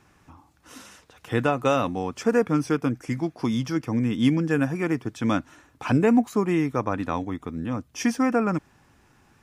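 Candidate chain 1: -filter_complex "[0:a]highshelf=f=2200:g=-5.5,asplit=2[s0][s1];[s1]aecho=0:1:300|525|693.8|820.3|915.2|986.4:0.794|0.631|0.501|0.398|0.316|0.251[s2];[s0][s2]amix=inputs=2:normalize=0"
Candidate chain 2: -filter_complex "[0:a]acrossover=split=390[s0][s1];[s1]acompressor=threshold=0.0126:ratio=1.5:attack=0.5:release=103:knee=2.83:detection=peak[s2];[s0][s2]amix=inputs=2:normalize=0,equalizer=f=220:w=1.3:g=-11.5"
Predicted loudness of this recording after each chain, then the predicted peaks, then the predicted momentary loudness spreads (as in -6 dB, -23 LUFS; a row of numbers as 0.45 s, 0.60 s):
-21.0 LUFS, -32.5 LUFS; -5.5 dBFS, -16.0 dBFS; 6 LU, 10 LU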